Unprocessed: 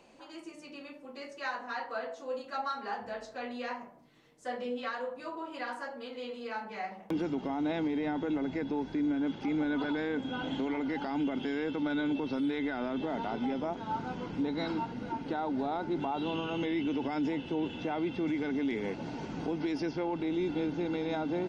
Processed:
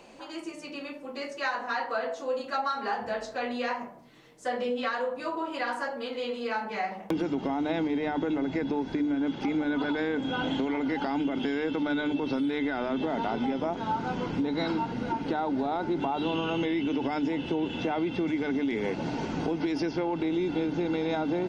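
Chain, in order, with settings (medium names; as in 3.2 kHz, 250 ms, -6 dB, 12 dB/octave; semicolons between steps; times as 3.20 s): hum notches 50/100/150/200/250/300 Hz; compression, threshold -33 dBFS, peak gain reduction 6 dB; trim +8 dB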